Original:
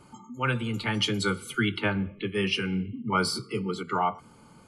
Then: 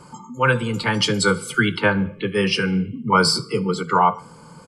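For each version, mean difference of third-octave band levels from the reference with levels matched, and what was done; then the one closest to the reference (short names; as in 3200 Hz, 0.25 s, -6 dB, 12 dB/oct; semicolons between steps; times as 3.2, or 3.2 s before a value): 2.0 dB: thirty-one-band EQ 160 Hz +12 dB, 500 Hz +11 dB, 1000 Hz +11 dB, 1600 Hz +7 dB, 5000 Hz +10 dB, 8000 Hz +10 dB; on a send: feedback echo 72 ms, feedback 41%, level -23.5 dB; on the sum: gain +4 dB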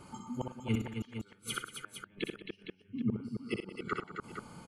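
11.0 dB: flipped gate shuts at -22 dBFS, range -39 dB; tapped delay 62/104/183/267/460/778 ms -5.5/-15/-15.5/-6.5/-8.5/-17.5 dB; gain +1 dB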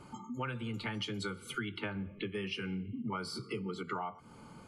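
3.5 dB: high shelf 6600 Hz -7 dB; compressor 10:1, threshold -36 dBFS, peak gain reduction 16.5 dB; gain +1 dB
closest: first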